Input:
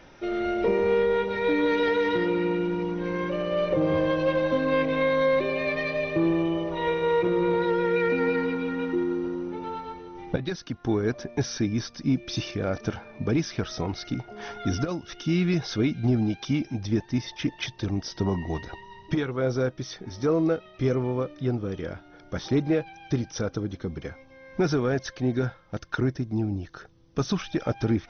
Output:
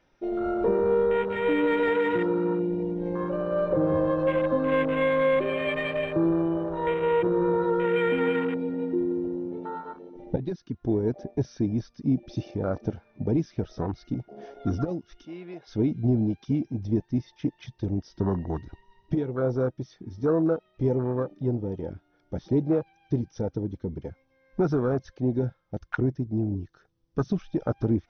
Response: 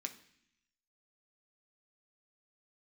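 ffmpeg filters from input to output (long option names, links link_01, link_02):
-filter_complex "[0:a]afwtdn=0.0282,asettb=1/sr,asplit=3[link_01][link_02][link_03];[link_01]atrim=end=15.254[link_04];[link_02]atrim=start=15.25:end=15.67,asetpts=PTS-STARTPTS,afade=type=in:duration=0.004:curve=qsin,afade=type=out:start_time=0.416:duration=0.004:curve=qsin,highpass=670,lowpass=3100[link_05];[link_03]atrim=start=15.666[link_06];[link_04][link_05]acrossfade=duration=0.004:curve1=hsin:curve2=qsin[link_07];[link_07][link_06]acrossfade=duration=0.004:curve1=qsin:curve2=hsin"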